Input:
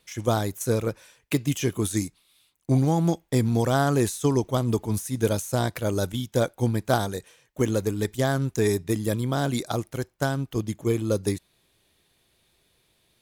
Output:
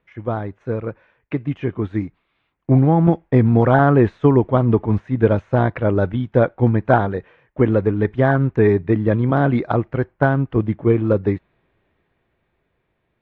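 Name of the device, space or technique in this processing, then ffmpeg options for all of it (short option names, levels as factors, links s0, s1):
action camera in a waterproof case: -af "lowpass=f=2100:w=0.5412,lowpass=f=2100:w=1.3066,dynaudnorm=f=280:g=17:m=5.01" -ar 44100 -c:a aac -b:a 48k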